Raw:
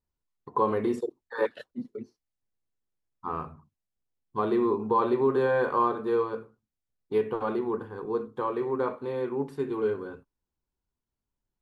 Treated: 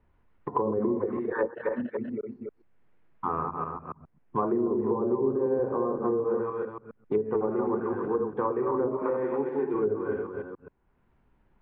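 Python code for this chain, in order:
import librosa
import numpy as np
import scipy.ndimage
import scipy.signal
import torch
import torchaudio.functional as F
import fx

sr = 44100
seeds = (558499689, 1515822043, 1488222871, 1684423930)

y = fx.reverse_delay(x, sr, ms=130, wet_db=-3.5)
y = fx.highpass(y, sr, hz=250.0, slope=12, at=(9.02, 9.74))
y = y + 10.0 ** (-9.0 / 20.0) * np.pad(y, (int(281 * sr / 1000.0), 0))[:len(y)]
y = fx.env_lowpass_down(y, sr, base_hz=480.0, full_db=-20.5)
y = scipy.signal.sosfilt(scipy.signal.butter(4, 2300.0, 'lowpass', fs=sr, output='sos'), y)
y = fx.band_squash(y, sr, depth_pct=70)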